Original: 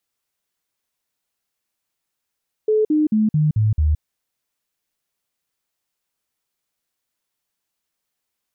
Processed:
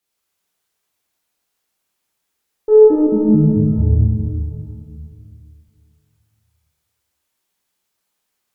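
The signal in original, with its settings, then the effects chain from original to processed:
stepped sine 431 Hz down, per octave 2, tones 6, 0.17 s, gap 0.05 s -13.5 dBFS
valve stage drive 10 dB, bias 0.3; plate-style reverb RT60 2.8 s, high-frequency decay 0.8×, DRR -6.5 dB

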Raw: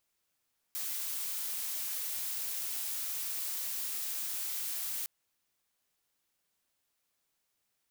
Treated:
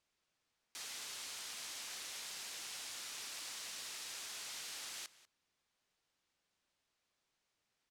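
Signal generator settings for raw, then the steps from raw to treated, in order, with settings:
noise blue, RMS -36.5 dBFS 4.31 s
low-pass 5.9 kHz 12 dB/octave; echo from a far wall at 33 m, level -17 dB

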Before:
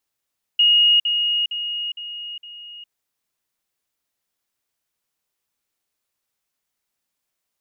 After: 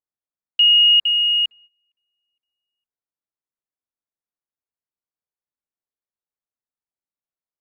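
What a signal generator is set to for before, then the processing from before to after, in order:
level ladder 2.87 kHz -11.5 dBFS, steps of -6 dB, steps 5, 0.41 s 0.05 s
local Wiener filter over 15 samples; gate -50 dBFS, range -20 dB; in parallel at +2 dB: peak limiter -23 dBFS

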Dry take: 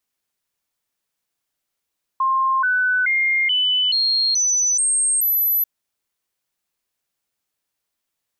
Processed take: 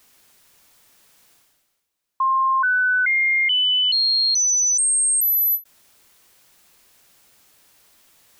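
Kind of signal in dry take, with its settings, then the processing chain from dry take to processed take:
stepped sine 1.06 kHz up, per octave 2, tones 8, 0.43 s, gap 0.00 s -15.5 dBFS
reverse; upward compressor, threshold -36 dBFS; reverse; endings held to a fixed fall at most 340 dB/s

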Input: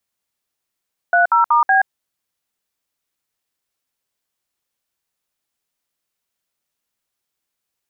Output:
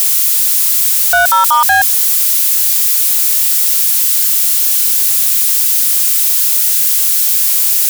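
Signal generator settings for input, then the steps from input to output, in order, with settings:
DTMF "30*B", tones 126 ms, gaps 61 ms, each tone -13 dBFS
zero-crossing glitches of -14 dBFS; high-pass 640 Hz 6 dB/octave; in parallel at -5.5 dB: sine folder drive 4 dB, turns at -7 dBFS

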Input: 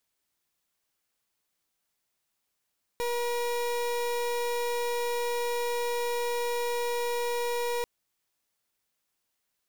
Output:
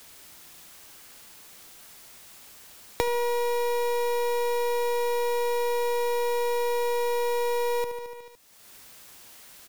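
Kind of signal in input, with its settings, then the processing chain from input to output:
pulse 479 Hz, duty 31% -29.5 dBFS 4.84 s
on a send: feedback delay 73 ms, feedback 59%, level -10 dB; on the sum: three bands compressed up and down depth 100%

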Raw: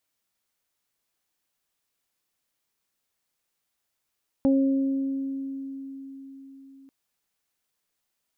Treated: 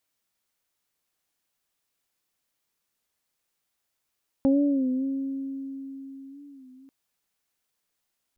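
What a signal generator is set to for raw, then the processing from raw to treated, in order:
additive tone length 2.44 s, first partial 271 Hz, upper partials -7.5/-18 dB, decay 4.67 s, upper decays 1.71/0.20 s, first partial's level -17 dB
warped record 33 1/3 rpm, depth 100 cents

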